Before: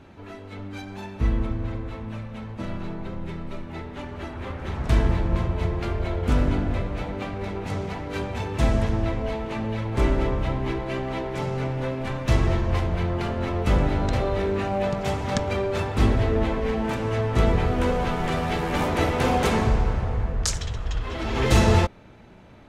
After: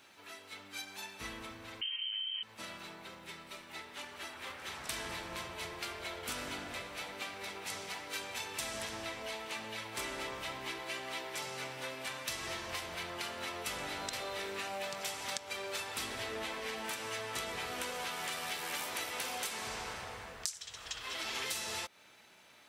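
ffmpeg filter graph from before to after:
-filter_complex "[0:a]asettb=1/sr,asplit=3[s0][s1][s2];[s0]atrim=end=1.814[s3];[s1]atrim=start=1.81:end=2.43,asetpts=PTS-STARTPTS,afade=t=in:d=0.004:c=qsin,afade=t=out:st=0.616:d=0.004:c=qsin,asubboost=boost=11.5:cutoff=150,lowpass=f=2700:t=q:w=0.5098,lowpass=f=2700:t=q:w=0.6013,lowpass=f=2700:t=q:w=0.9,lowpass=f=2700:t=q:w=2.563,afreqshift=-3200[s4];[s2]atrim=start=2.426[s5];[s3][s4]acrossfade=d=0.004:c1=hsin:c2=qsin[s6];[s6][s5]acrossfade=d=0.004:c1=qsin:c2=hsin,aderivative,bandreject=f=6700:w=18,acompressor=threshold=0.00708:ratio=16,volume=2.51"

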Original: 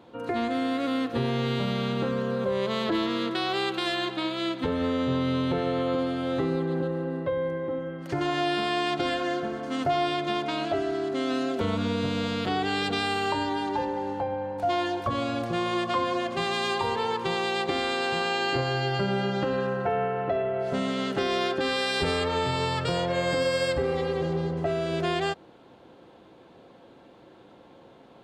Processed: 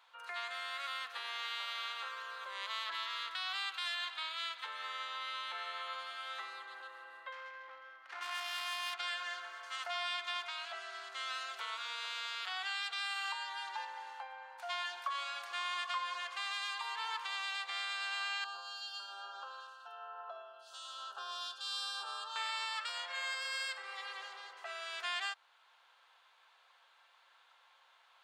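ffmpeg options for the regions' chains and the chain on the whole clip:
-filter_complex "[0:a]asettb=1/sr,asplit=3[s0][s1][s2];[s0]atrim=end=7.324[s3];[s1]atrim=start=7.32:end=8.99,asetpts=PTS-STARTPTS,afade=t=in:d=0.004:c=qsin,afade=t=out:st=1.666:d=0.004:c=qsin,asoftclip=type=hard:threshold=0.0596,adynamicsmooth=sensitivity=5.5:basefreq=1700[s4];[s2]atrim=start=8.986[s5];[s3][s4]acrossfade=d=0.004:c1=hsin:c2=qsin[s6];[s6][s5]acrossfade=d=0.004:c1=qsin:c2=hsin,asettb=1/sr,asplit=3[s7][s8][s9];[s7]atrim=end=18.444[s10];[s8]atrim=start=18.44:end=22.36,asetpts=PTS-STARTPTS,afade=t=in:d=0.004:c=qsin,afade=t=out:st=3.916:d=0.004:c=qsin,lowshelf=f=170:g=-11.5,acrossover=split=2200[s11][s12];[s11]aeval=exprs='val(0)*(1-0.7/2+0.7/2*cos(2*PI*1.1*n/s))':c=same[s13];[s12]aeval=exprs='val(0)*(1-0.7/2-0.7/2*cos(2*PI*1.1*n/s))':c=same[s14];[s13][s14]amix=inputs=2:normalize=0,asuperstop=centerf=2100:order=4:qfactor=1.2[s15];[s9]atrim=start=22.356[s16];[s10][s15]acrossfade=d=0.004:c1=hsin:c2=qsin[s17];[s17][s16]acrossfade=d=0.004:c1=qsin:c2=hsin,highpass=f=1100:w=0.5412,highpass=f=1100:w=1.3066,alimiter=limit=0.0708:level=0:latency=1:release=488,volume=0.668"

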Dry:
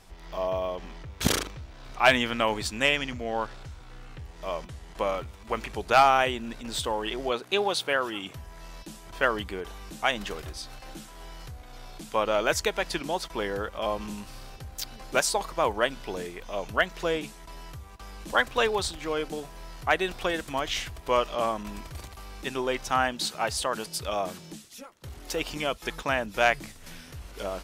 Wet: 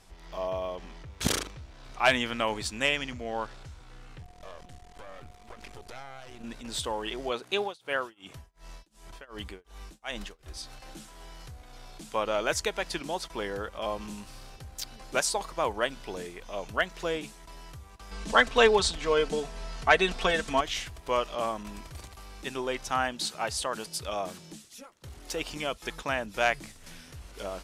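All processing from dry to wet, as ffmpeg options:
-filter_complex "[0:a]asettb=1/sr,asplit=3[s0][s1][s2];[s0]atrim=end=4.224[s3];[s1]atrim=start=4.22:end=6.44,asetpts=PTS-STARTPTS,afade=t=in:d=0.004:c=qsin,afade=t=out:st=2.216:d=0.004:c=qsin,acompressor=threshold=0.0251:ratio=10:attack=3.2:release=140:knee=1:detection=peak,aeval=exprs='max(val(0),0)':c=same,aeval=exprs='val(0)+0.00251*sin(2*PI*720*n/s)':c=same[s4];[s2]atrim=start=6.436[s5];[s3][s4]acrossfade=d=0.004:c1=hsin:c2=qsin[s6];[s6][s5]acrossfade=d=0.004:c1=qsin:c2=hsin,asettb=1/sr,asplit=3[s7][s8][s9];[s7]atrim=end=7.604[s10];[s8]atrim=start=7.6:end=10.55,asetpts=PTS-STARTPTS,afade=t=in:d=0.004:c=qsin,afade=t=out:st=2.946:d=0.004:c=qsin,asubboost=boost=2.5:cutoff=69,tremolo=f=2.7:d=0.98[s11];[s9]atrim=start=10.546[s12];[s10][s11]acrossfade=d=0.004:c1=hsin:c2=qsin[s13];[s13][s12]acrossfade=d=0.004:c1=qsin:c2=hsin,asettb=1/sr,asplit=3[s14][s15][s16];[s14]atrim=end=18.114[s17];[s15]atrim=start=18.11:end=20.61,asetpts=PTS-STARTPTS,afade=t=in:d=0.004:c=qsin,afade=t=out:st=2.496:d=0.004:c=qsin,lowpass=7900,acontrast=37,aecho=1:1:4.5:0.6,atrim=end_sample=110250[s18];[s16]atrim=start=20.606[s19];[s17][s18]acrossfade=d=0.004:c1=hsin:c2=qsin[s20];[s20][s19]acrossfade=d=0.004:c1=qsin:c2=hsin,lowpass=11000,highshelf=f=6700:g=5,volume=0.668"

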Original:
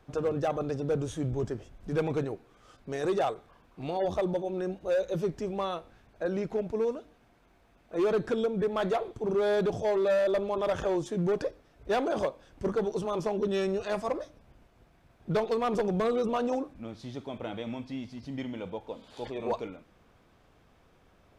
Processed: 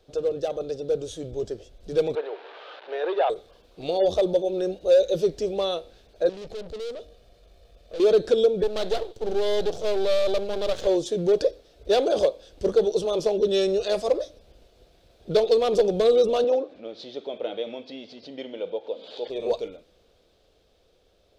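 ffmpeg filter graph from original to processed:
-filter_complex "[0:a]asettb=1/sr,asplit=3[s0][s1][s2];[s0]atrim=end=2.154[s3];[s1]atrim=start=2.15:end=3.3,asetpts=PTS-STARTPTS,afade=t=in:d=0.004:c=qsin,afade=t=out:st=1.146:d=0.004:c=qsin,aeval=exprs='val(0)+0.5*0.0112*sgn(val(0))':c=same,highpass=f=450:w=0.5412,highpass=f=450:w=1.3066,equalizer=f=510:t=q:w=4:g=-5,equalizer=f=930:t=q:w=4:g=10,equalizer=f=1600:t=q:w=4:g=6,lowpass=f=2800:w=0.5412,lowpass=f=2800:w=1.3066[s4];[s2]atrim=start=3.296[s5];[s3][s4]acrossfade=d=0.004:c1=hsin:c2=qsin[s6];[s6][s5]acrossfade=d=0.004:c1=qsin:c2=hsin,asettb=1/sr,asplit=3[s7][s8][s9];[s7]atrim=end=6.294[s10];[s8]atrim=start=6.29:end=8,asetpts=PTS-STARTPTS,afade=t=in:d=0.004:c=qsin,afade=t=out:st=1.706:d=0.004:c=qsin,lowshelf=f=200:g=8,aecho=1:1:1.7:0.45,atrim=end_sample=75411,aeval=exprs='(tanh(112*val(0)+0.45)-tanh(0.45))/112':c=same[s11];[s9]atrim=start=7.996[s12];[s10][s11]acrossfade=d=0.004:c1=hsin:c2=qsin[s13];[s13][s12]acrossfade=d=0.004:c1=qsin:c2=hsin,asettb=1/sr,asplit=3[s14][s15][s16];[s14]atrim=end=8.634[s17];[s15]atrim=start=8.63:end=10.87,asetpts=PTS-STARTPTS,afade=t=in:d=0.004:c=qsin,afade=t=out:st=2.236:d=0.004:c=qsin,highpass=88,aeval=exprs='max(val(0),0)':c=same[s18];[s16]atrim=start=10.866[s19];[s17][s18]acrossfade=d=0.004:c1=hsin:c2=qsin[s20];[s20][s19]acrossfade=d=0.004:c1=qsin:c2=hsin,asettb=1/sr,asplit=3[s21][s22][s23];[s21]atrim=end=16.444[s24];[s22]atrim=start=16.44:end=19.3,asetpts=PTS-STARTPTS,afade=t=in:d=0.004:c=qsin,afade=t=out:st=2.856:d=0.004:c=qsin,acompressor=mode=upward:threshold=0.0141:ratio=2.5:attack=3.2:release=140:knee=2.83:detection=peak,highpass=270,lowpass=3200[s25];[s23]atrim=start=19.296[s26];[s24][s25]acrossfade=d=0.004:c1=hsin:c2=qsin[s27];[s27][s26]acrossfade=d=0.004:c1=qsin:c2=hsin,equalizer=f=125:t=o:w=1:g=-9,equalizer=f=250:t=o:w=1:g=-7,equalizer=f=500:t=o:w=1:g=9,equalizer=f=1000:t=o:w=1:g=-11,equalizer=f=2000:t=o:w=1:g=-7,equalizer=f=4000:t=o:w=1:g=10,dynaudnorm=f=200:g=21:m=2"

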